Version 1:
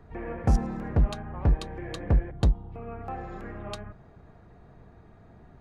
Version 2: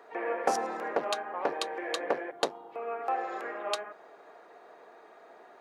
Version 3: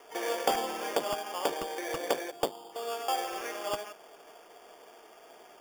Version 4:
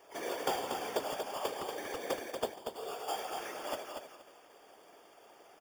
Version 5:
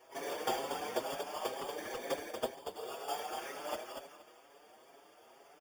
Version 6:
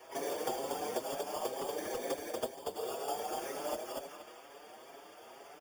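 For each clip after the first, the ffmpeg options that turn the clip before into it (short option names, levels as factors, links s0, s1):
-af "highpass=f=430:w=0.5412,highpass=f=430:w=1.3066,volume=2.24"
-filter_complex "[0:a]acrossover=split=880|1100[s0][s1][s2];[s2]alimiter=limit=0.0631:level=0:latency=1:release=175[s3];[s0][s1][s3]amix=inputs=3:normalize=0,acrusher=samples=11:mix=1:aa=0.000001"
-filter_complex "[0:a]afftfilt=real='hypot(re,im)*cos(2*PI*random(0))':imag='hypot(re,im)*sin(2*PI*random(1))':win_size=512:overlap=0.75,asplit=2[s0][s1];[s1]aecho=0:1:236|472|708:0.501|0.0952|0.0181[s2];[s0][s2]amix=inputs=2:normalize=0"
-filter_complex "[0:a]asplit=2[s0][s1];[s1]adelay=6,afreqshift=2.1[s2];[s0][s2]amix=inputs=2:normalize=1,volume=1.19"
-filter_complex "[0:a]acrossover=split=300|780|4900[s0][s1][s2][s3];[s0]acompressor=threshold=0.00141:ratio=4[s4];[s1]acompressor=threshold=0.00708:ratio=4[s5];[s2]acompressor=threshold=0.00158:ratio=4[s6];[s3]acompressor=threshold=0.00251:ratio=4[s7];[s4][s5][s6][s7]amix=inputs=4:normalize=0,volume=2.24"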